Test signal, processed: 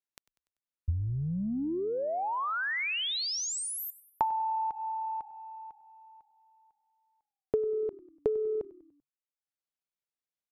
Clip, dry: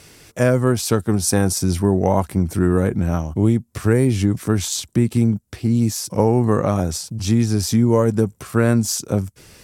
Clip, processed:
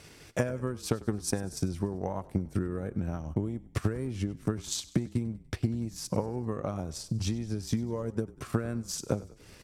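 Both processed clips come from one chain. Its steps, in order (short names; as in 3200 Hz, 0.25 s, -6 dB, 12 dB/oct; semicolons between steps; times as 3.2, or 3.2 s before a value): high shelf 8300 Hz -9 dB; compressor 12:1, threshold -24 dBFS; transient shaper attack +6 dB, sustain -9 dB; on a send: frequency-shifting echo 97 ms, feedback 51%, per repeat -36 Hz, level -19 dB; on the sum: gain -5 dB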